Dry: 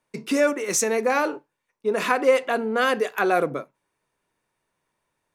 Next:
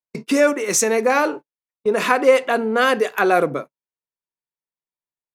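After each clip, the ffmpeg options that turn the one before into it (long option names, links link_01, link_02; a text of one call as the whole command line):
ffmpeg -i in.wav -af "agate=range=-31dB:threshold=-35dB:ratio=16:detection=peak,volume=4.5dB" out.wav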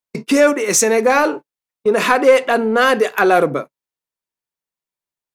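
ffmpeg -i in.wav -af "acontrast=36,volume=-1dB" out.wav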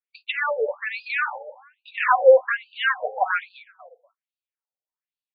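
ffmpeg -i in.wav -af "aecho=1:1:244|488:0.112|0.0247,afftfilt=real='re*between(b*sr/1024,580*pow(3500/580,0.5+0.5*sin(2*PI*1.2*pts/sr))/1.41,580*pow(3500/580,0.5+0.5*sin(2*PI*1.2*pts/sr))*1.41)':imag='im*between(b*sr/1024,580*pow(3500/580,0.5+0.5*sin(2*PI*1.2*pts/sr))/1.41,580*pow(3500/580,0.5+0.5*sin(2*PI*1.2*pts/sr))*1.41)':win_size=1024:overlap=0.75,volume=-1.5dB" out.wav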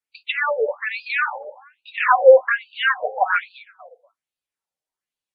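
ffmpeg -i in.wav -af "volume=3dB" -ar 48000 -c:a aac -b:a 32k out.aac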